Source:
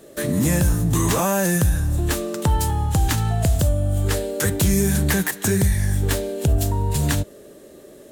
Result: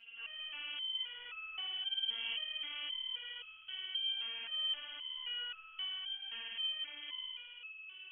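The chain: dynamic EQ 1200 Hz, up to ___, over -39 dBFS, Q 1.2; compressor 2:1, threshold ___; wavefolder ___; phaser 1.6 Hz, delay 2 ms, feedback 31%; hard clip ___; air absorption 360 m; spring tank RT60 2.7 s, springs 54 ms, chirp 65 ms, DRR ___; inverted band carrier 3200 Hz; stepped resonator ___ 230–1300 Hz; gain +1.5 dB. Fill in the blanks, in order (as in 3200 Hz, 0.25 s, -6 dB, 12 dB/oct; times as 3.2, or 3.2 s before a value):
+5 dB, -21 dBFS, -21.5 dBFS, -35.5 dBFS, -7 dB, 3.8 Hz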